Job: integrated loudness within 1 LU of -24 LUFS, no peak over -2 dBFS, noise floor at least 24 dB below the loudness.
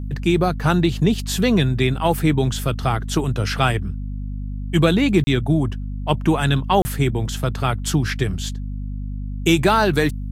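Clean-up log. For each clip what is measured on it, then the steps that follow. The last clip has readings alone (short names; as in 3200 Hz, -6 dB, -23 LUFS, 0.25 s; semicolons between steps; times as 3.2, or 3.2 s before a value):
dropouts 2; longest dropout 30 ms; hum 50 Hz; harmonics up to 250 Hz; hum level -25 dBFS; loudness -20.0 LUFS; peak -2.0 dBFS; loudness target -24.0 LUFS
-> interpolate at 5.24/6.82, 30 ms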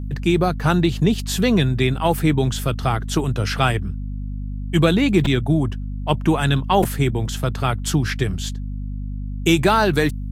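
dropouts 0; hum 50 Hz; harmonics up to 250 Hz; hum level -25 dBFS
-> notches 50/100/150/200/250 Hz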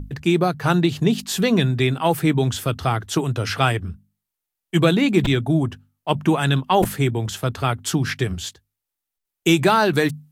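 hum none; loudness -20.5 LUFS; peak -3.5 dBFS; loudness target -24.0 LUFS
-> gain -3.5 dB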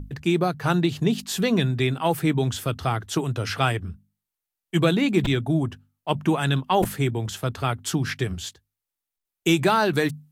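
loudness -24.0 LUFS; peak -7.0 dBFS; noise floor -87 dBFS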